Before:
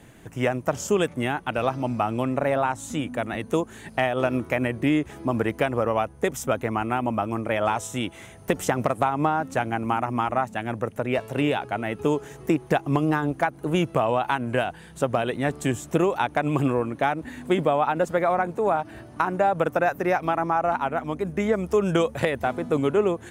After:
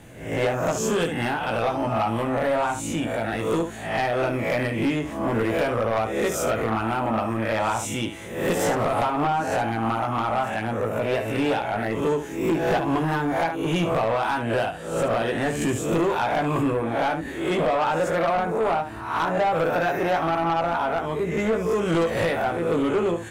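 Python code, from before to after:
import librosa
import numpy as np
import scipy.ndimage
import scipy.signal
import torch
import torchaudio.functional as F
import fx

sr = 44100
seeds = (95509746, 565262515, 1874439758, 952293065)

y = fx.spec_swells(x, sr, rise_s=0.6)
y = fx.room_early_taps(y, sr, ms=(18, 72), db=(-4.5, -10.0))
y = 10.0 ** (-17.0 / 20.0) * np.tanh(y / 10.0 ** (-17.0 / 20.0))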